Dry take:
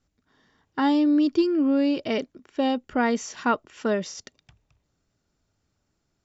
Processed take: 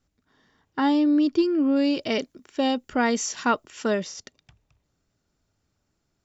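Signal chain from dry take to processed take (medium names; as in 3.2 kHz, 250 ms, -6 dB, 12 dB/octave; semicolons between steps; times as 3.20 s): 1.76–4.03 s: treble shelf 4.5 kHz +12 dB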